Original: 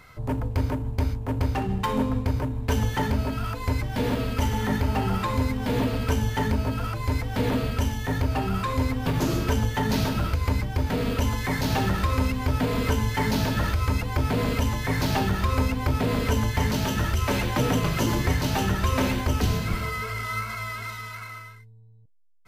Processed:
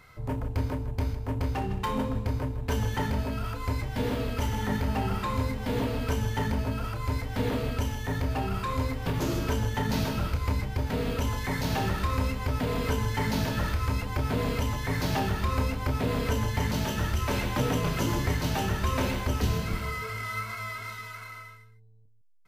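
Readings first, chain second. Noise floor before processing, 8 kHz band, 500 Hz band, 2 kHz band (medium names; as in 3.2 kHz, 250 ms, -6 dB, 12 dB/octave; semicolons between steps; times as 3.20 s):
-45 dBFS, -4.0 dB, -3.0 dB, -3.5 dB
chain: loudspeakers at several distances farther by 10 m -9 dB, 54 m -12 dB; trim -4.5 dB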